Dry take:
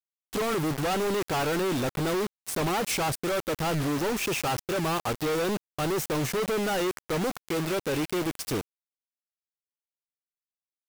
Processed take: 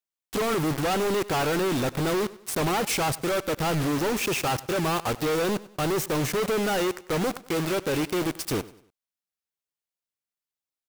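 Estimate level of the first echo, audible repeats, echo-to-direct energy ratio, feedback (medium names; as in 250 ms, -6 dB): -19.0 dB, 2, -18.5 dB, 37%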